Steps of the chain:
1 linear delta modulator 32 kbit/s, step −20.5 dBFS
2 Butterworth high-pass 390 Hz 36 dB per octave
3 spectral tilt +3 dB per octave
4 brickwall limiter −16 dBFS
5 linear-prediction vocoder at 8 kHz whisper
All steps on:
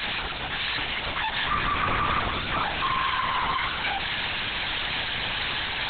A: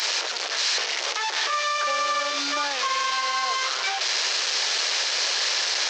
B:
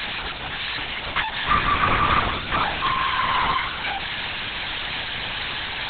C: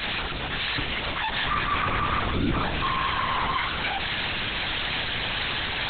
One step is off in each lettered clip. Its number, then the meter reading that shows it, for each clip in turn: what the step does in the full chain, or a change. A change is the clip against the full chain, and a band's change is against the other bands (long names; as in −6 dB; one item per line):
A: 5, 250 Hz band −9.0 dB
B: 4, average gain reduction 1.5 dB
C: 2, 250 Hz band +5.5 dB